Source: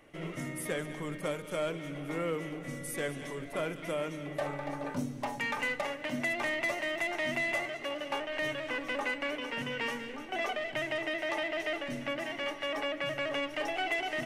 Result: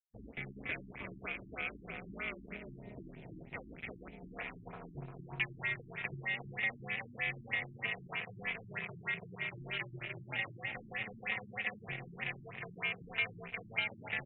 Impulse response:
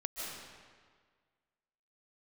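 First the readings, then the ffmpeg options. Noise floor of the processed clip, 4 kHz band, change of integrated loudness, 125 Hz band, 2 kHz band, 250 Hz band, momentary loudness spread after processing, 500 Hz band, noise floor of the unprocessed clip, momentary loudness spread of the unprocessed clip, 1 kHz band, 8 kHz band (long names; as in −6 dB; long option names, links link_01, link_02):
−55 dBFS, −7.5 dB, −5.5 dB, −3.5 dB, −3.5 dB, −11.5 dB, 12 LU, −15.5 dB, −44 dBFS, 6 LU, −11.5 dB, below −35 dB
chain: -filter_complex "[0:a]asplit=2[link_01][link_02];[link_02]adelay=351,lowpass=frequency=1500:poles=1,volume=-5dB,asplit=2[link_03][link_04];[link_04]adelay=351,lowpass=frequency=1500:poles=1,volume=0.48,asplit=2[link_05][link_06];[link_06]adelay=351,lowpass=frequency=1500:poles=1,volume=0.48,asplit=2[link_07][link_08];[link_08]adelay=351,lowpass=frequency=1500:poles=1,volume=0.48,asplit=2[link_09][link_10];[link_10]adelay=351,lowpass=frequency=1500:poles=1,volume=0.48,asplit=2[link_11][link_12];[link_12]adelay=351,lowpass=frequency=1500:poles=1,volume=0.48[link_13];[link_01][link_03][link_05][link_07][link_09][link_11][link_13]amix=inputs=7:normalize=0,aeval=exprs='sgn(val(0))*max(abs(val(0))-0.00398,0)':channel_layout=same,acrossover=split=270|1500[link_14][link_15][link_16];[link_14]acompressor=threshold=-55dB:ratio=4[link_17];[link_15]acompressor=threshold=-46dB:ratio=4[link_18];[link_16]acompressor=threshold=-39dB:ratio=4[link_19];[link_17][link_18][link_19]amix=inputs=3:normalize=0,afwtdn=0.00562,equalizer=frequency=2400:width=3:gain=15,aeval=exprs='val(0)*sin(2*PI*110*n/s)':channel_layout=same,equalizer=frequency=125:width_type=o:width=1:gain=9,equalizer=frequency=500:width_type=o:width=1:gain=-4,equalizer=frequency=4000:width_type=o:width=1:gain=5,equalizer=frequency=8000:width_type=o:width=1:gain=-7,afftfilt=real='re*lt(b*sr/1024,340*pow(4200/340,0.5+0.5*sin(2*PI*3.2*pts/sr)))':imag='im*lt(b*sr/1024,340*pow(4200/340,0.5+0.5*sin(2*PI*3.2*pts/sr)))':win_size=1024:overlap=0.75,volume=1dB"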